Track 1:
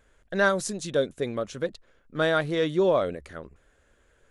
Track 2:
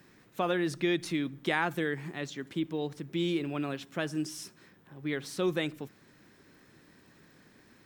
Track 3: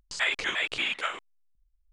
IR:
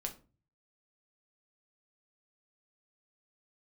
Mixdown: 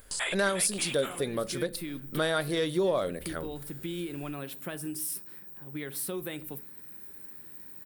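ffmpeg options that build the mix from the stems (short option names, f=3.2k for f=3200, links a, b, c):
-filter_complex "[0:a]equalizer=f=4.8k:w=2:g=11.5,volume=2dB,asplit=3[a][b][c];[b]volume=-7.5dB[d];[1:a]acompressor=threshold=-31dB:ratio=6,adelay=700,volume=-3.5dB,asplit=2[e][f];[f]volume=-6dB[g];[2:a]equalizer=f=2.1k:t=o:w=1.5:g=-5.5,volume=3dB[h];[c]apad=whole_len=377291[i];[e][i]sidechaincompress=threshold=-30dB:ratio=8:attack=16:release=224[j];[3:a]atrim=start_sample=2205[k];[d][g]amix=inputs=2:normalize=0[l];[l][k]afir=irnorm=-1:irlink=0[m];[a][j][h][m]amix=inputs=4:normalize=0,aexciter=amount=6.6:drive=8.8:freq=9k,acompressor=threshold=-32dB:ratio=2"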